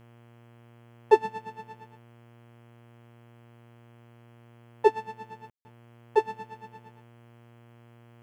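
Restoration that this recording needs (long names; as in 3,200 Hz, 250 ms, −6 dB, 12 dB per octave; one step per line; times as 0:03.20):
hum removal 117.9 Hz, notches 28
ambience match 0:05.50–0:05.65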